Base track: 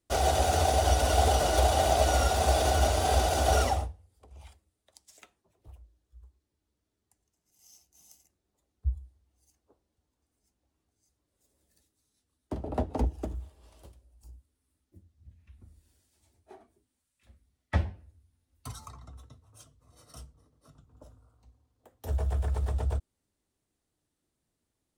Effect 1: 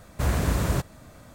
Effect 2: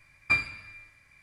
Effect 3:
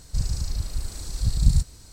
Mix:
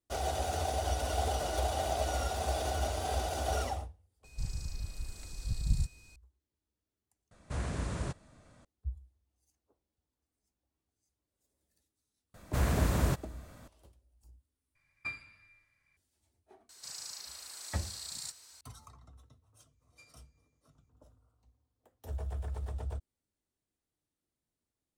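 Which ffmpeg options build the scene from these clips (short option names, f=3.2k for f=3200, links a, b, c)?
-filter_complex "[3:a]asplit=2[a][b];[1:a]asplit=2[c][d];[2:a]asplit=2[e][f];[0:a]volume=-8.5dB[g];[a]aeval=exprs='val(0)+0.00355*sin(2*PI*2500*n/s)':c=same[h];[c]aresample=22050,aresample=44100[i];[b]highpass=950[j];[f]bandpass=f=6.6k:t=q:w=11:csg=0[k];[g]asplit=3[l][m][n];[l]atrim=end=7.314[o];[i]atrim=end=1.34,asetpts=PTS-STARTPTS,volume=-11.5dB[p];[m]atrim=start=8.646:end=14.754[q];[e]atrim=end=1.22,asetpts=PTS-STARTPTS,volume=-15dB[r];[n]atrim=start=15.966[s];[h]atrim=end=1.92,asetpts=PTS-STARTPTS,volume=-11.5dB,afade=t=in:d=0.004:c=hsin,afade=t=out:st=1.916:d=0.004:c=hsin,adelay=4240[t];[d]atrim=end=1.34,asetpts=PTS-STARTPTS,volume=-5dB,afade=t=in:d=0.004:c=hsin,afade=t=out:st=1.336:d=0.004:c=hsin,adelay=12340[u];[j]atrim=end=1.92,asetpts=PTS-STARTPTS,volume=-3.5dB,afade=t=in:d=0.004:c=hsin,afade=t=out:st=1.916:d=0.004:c=hsin,adelay=16690[v];[k]atrim=end=1.22,asetpts=PTS-STARTPTS,volume=-7.5dB,afade=t=in:d=0.004:c=hsin,afade=t=out:st=1.216:d=0.004:c=hsin,adelay=19680[w];[o][p]acrossfade=d=0.004:c1=hsin:c2=hsin[x];[x][q]acrossfade=d=0.004:c1=hsin:c2=hsin[y];[y][r]acrossfade=d=0.004:c1=hsin:c2=hsin[z];[z][s]acrossfade=d=0.004:c1=hsin:c2=hsin[aa];[aa][t][u][v][w]amix=inputs=5:normalize=0"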